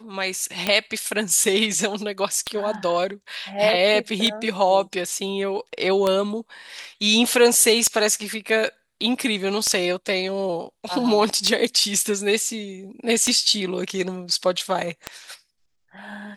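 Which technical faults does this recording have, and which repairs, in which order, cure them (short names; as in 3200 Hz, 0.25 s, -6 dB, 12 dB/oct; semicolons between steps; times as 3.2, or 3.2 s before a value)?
tick 33 1/3 rpm -7 dBFS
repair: de-click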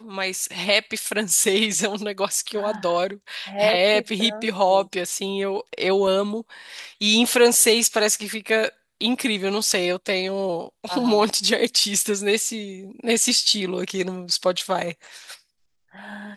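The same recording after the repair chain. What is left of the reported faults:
none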